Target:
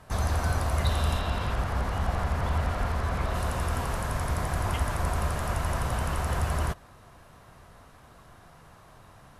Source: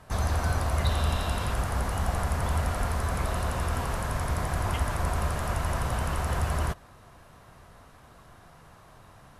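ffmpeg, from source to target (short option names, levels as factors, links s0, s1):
-filter_complex "[0:a]asettb=1/sr,asplit=3[s0][s1][s2];[s0]atrim=end=1.194[s3];[s1]atrim=start=1.19:end=3.35,asetpts=PTS-STARTPTS,afade=t=in:d=0.004:c=qsin,afade=t=out:st=2.156:d=0.004:c=qsin,acrossover=split=5000[s4][s5];[s5]acompressor=threshold=0.00251:ratio=4:attack=1:release=60[s6];[s4][s6]amix=inputs=2:normalize=0[s7];[s2]atrim=start=3.346[s8];[s3][s7]acrossfade=d=0.004:c1=hsin:c2=qsin[s9];[s9][s8]acrossfade=d=0.004:c1=qsin:c2=hsin"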